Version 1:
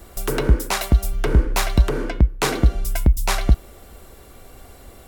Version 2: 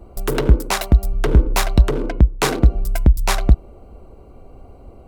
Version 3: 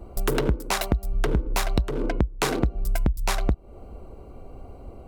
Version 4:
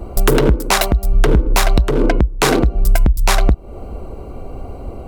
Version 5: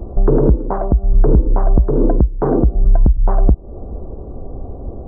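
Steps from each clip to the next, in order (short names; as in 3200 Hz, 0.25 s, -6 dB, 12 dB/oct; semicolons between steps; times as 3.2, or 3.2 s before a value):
Wiener smoothing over 25 samples; gain +3 dB
compressor 12:1, threshold -19 dBFS, peak gain reduction 14.5 dB
maximiser +13.5 dB; gain -1 dB
Gaussian blur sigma 9.8 samples; gain +1.5 dB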